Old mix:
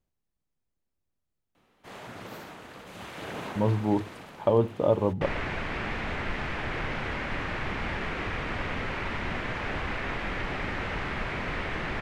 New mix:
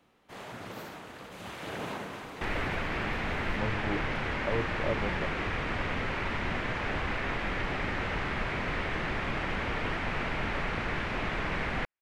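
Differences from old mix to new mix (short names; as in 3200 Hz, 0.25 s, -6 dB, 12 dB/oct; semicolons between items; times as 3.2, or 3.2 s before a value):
speech -10.0 dB; first sound: entry -1.55 s; second sound: entry -2.80 s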